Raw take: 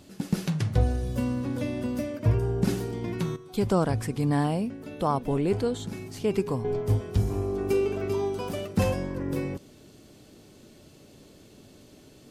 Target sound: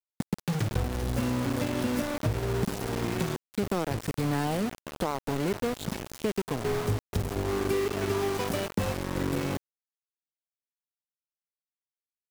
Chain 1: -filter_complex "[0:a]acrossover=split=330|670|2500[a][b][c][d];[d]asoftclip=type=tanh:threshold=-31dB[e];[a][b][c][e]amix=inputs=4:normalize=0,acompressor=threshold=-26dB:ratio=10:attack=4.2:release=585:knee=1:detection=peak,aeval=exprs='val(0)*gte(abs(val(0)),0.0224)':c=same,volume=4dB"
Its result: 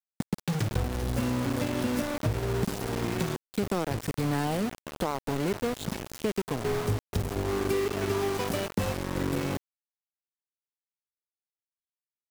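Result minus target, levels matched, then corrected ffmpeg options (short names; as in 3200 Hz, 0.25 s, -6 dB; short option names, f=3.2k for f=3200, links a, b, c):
soft clip: distortion -8 dB
-filter_complex "[0:a]acrossover=split=330|670|2500[a][b][c][d];[d]asoftclip=type=tanh:threshold=-38dB[e];[a][b][c][e]amix=inputs=4:normalize=0,acompressor=threshold=-26dB:ratio=10:attack=4.2:release=585:knee=1:detection=peak,aeval=exprs='val(0)*gte(abs(val(0)),0.0224)':c=same,volume=4dB"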